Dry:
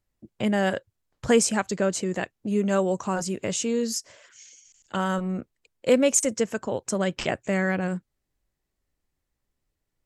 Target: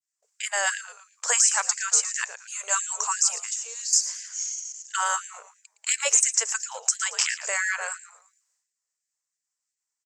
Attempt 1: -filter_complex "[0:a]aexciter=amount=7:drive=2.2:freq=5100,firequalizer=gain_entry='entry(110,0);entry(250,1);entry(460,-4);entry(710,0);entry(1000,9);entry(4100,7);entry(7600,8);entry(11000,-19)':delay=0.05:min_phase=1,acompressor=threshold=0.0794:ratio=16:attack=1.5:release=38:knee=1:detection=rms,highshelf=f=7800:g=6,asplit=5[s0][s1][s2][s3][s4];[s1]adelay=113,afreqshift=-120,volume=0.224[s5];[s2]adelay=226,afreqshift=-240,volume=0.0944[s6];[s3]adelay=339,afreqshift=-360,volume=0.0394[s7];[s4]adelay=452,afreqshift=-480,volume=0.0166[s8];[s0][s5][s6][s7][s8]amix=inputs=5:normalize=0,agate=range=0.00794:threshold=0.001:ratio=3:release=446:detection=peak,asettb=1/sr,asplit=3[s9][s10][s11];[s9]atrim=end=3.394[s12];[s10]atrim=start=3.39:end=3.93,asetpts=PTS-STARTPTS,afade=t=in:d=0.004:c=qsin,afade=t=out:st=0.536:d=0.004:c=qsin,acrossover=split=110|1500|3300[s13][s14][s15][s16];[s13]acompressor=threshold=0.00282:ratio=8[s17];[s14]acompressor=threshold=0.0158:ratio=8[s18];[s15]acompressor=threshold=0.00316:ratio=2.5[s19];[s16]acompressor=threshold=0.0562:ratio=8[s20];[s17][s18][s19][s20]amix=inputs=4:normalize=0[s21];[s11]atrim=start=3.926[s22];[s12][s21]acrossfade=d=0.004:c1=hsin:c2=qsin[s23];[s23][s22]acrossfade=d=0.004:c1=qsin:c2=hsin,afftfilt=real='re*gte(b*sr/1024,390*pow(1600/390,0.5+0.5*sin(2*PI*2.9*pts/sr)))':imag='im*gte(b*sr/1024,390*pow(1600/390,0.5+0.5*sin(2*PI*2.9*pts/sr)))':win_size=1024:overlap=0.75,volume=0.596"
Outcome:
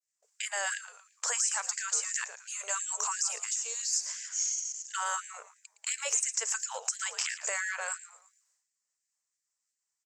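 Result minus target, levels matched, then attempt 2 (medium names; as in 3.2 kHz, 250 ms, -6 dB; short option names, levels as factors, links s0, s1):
compression: peak gain reduction +10 dB
-filter_complex "[0:a]aexciter=amount=7:drive=2.2:freq=5100,firequalizer=gain_entry='entry(110,0);entry(250,1);entry(460,-4);entry(710,0);entry(1000,9);entry(4100,7);entry(7600,8);entry(11000,-19)':delay=0.05:min_phase=1,acompressor=threshold=0.266:ratio=16:attack=1.5:release=38:knee=1:detection=rms,highshelf=f=7800:g=6,asplit=5[s0][s1][s2][s3][s4];[s1]adelay=113,afreqshift=-120,volume=0.224[s5];[s2]adelay=226,afreqshift=-240,volume=0.0944[s6];[s3]adelay=339,afreqshift=-360,volume=0.0394[s7];[s4]adelay=452,afreqshift=-480,volume=0.0166[s8];[s0][s5][s6][s7][s8]amix=inputs=5:normalize=0,agate=range=0.00794:threshold=0.001:ratio=3:release=446:detection=peak,asettb=1/sr,asplit=3[s9][s10][s11];[s9]atrim=end=3.394[s12];[s10]atrim=start=3.39:end=3.93,asetpts=PTS-STARTPTS,afade=t=in:d=0.004:c=qsin,afade=t=out:st=0.536:d=0.004:c=qsin,acrossover=split=110|1500|3300[s13][s14][s15][s16];[s13]acompressor=threshold=0.00282:ratio=8[s17];[s14]acompressor=threshold=0.0158:ratio=8[s18];[s15]acompressor=threshold=0.00316:ratio=2.5[s19];[s16]acompressor=threshold=0.0562:ratio=8[s20];[s17][s18][s19][s20]amix=inputs=4:normalize=0[s21];[s11]atrim=start=3.926[s22];[s12][s21]acrossfade=d=0.004:c1=hsin:c2=qsin[s23];[s23][s22]acrossfade=d=0.004:c1=qsin:c2=hsin,afftfilt=real='re*gte(b*sr/1024,390*pow(1600/390,0.5+0.5*sin(2*PI*2.9*pts/sr)))':imag='im*gte(b*sr/1024,390*pow(1600/390,0.5+0.5*sin(2*PI*2.9*pts/sr)))':win_size=1024:overlap=0.75,volume=0.596"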